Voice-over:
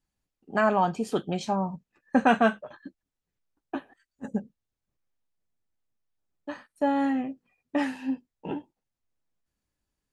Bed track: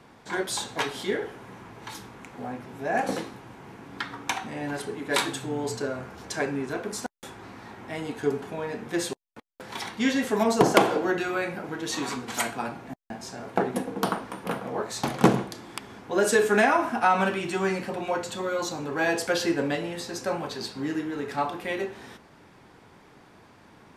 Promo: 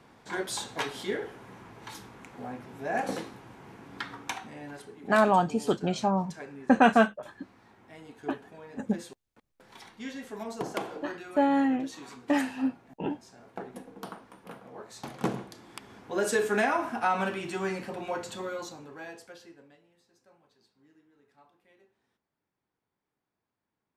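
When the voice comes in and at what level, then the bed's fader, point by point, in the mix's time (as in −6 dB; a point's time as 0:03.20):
4.55 s, +1.0 dB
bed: 0:04.11 −4 dB
0:05.03 −15 dB
0:14.71 −15 dB
0:16.05 −5.5 dB
0:18.43 −5.5 dB
0:19.84 −33.5 dB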